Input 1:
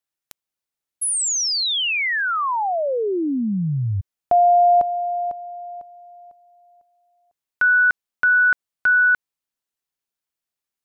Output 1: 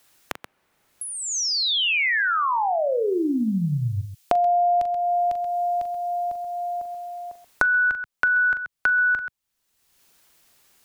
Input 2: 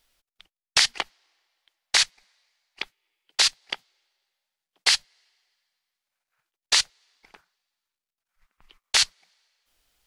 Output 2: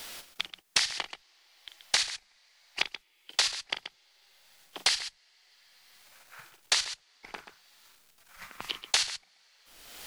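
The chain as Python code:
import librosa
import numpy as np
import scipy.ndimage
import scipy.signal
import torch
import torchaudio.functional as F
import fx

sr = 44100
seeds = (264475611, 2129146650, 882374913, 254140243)

y = fx.echo_multitap(x, sr, ms=(41, 131), db=(-10.5, -13.0))
y = fx.band_squash(y, sr, depth_pct=100)
y = F.gain(torch.from_numpy(y), -3.0).numpy()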